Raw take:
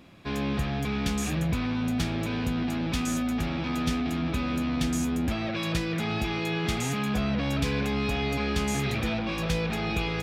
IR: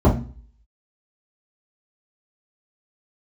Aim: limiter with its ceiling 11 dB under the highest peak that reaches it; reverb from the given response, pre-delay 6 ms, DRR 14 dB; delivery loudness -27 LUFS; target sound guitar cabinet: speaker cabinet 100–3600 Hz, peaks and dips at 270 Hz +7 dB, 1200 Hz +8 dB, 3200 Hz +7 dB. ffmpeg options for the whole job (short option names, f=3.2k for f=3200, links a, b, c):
-filter_complex "[0:a]alimiter=level_in=1dB:limit=-24dB:level=0:latency=1,volume=-1dB,asplit=2[a][b];[1:a]atrim=start_sample=2205,adelay=6[c];[b][c]afir=irnorm=-1:irlink=0,volume=-34.5dB[d];[a][d]amix=inputs=2:normalize=0,highpass=100,equalizer=f=270:t=q:w=4:g=7,equalizer=f=1.2k:t=q:w=4:g=8,equalizer=f=3.2k:t=q:w=4:g=7,lowpass=f=3.6k:w=0.5412,lowpass=f=3.6k:w=1.3066,volume=3dB"